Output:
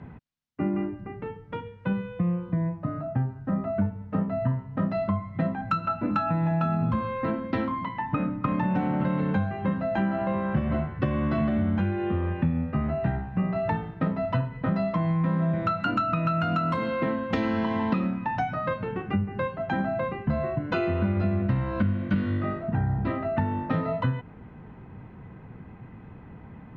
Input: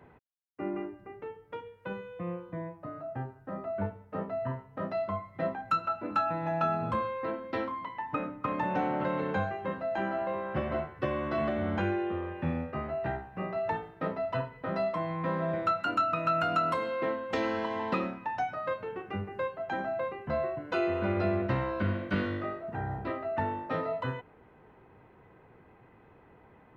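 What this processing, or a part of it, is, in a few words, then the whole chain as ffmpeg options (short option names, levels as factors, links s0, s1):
jukebox: -af "lowpass=5100,lowshelf=f=290:t=q:w=1.5:g=9.5,acompressor=threshold=0.0355:ratio=5,volume=2.11"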